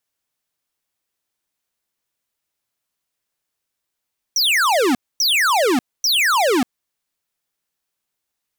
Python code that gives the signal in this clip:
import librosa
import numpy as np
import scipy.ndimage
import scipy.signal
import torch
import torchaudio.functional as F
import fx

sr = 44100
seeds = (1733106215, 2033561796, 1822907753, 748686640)

y = fx.laser_zaps(sr, level_db=-16.0, start_hz=6100.0, end_hz=230.0, length_s=0.59, wave='square', shots=3, gap_s=0.25)